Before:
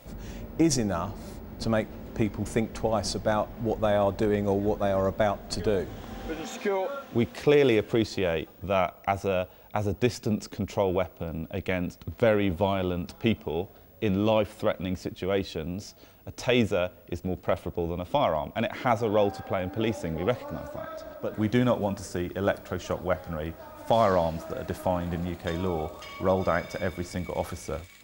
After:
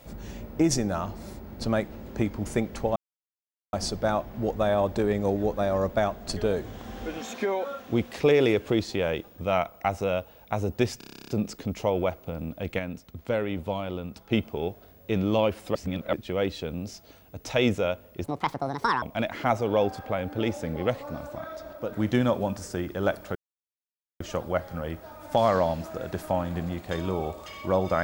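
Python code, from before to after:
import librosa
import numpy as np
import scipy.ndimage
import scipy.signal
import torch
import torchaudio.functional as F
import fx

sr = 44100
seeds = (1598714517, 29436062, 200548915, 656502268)

y = fx.edit(x, sr, fx.insert_silence(at_s=2.96, length_s=0.77),
    fx.stutter(start_s=10.21, slice_s=0.03, count=11),
    fx.clip_gain(start_s=11.72, length_s=1.53, db=-5.0),
    fx.reverse_span(start_s=14.68, length_s=0.38),
    fx.speed_span(start_s=17.17, length_s=1.26, speed=1.61),
    fx.insert_silence(at_s=22.76, length_s=0.85), tone=tone)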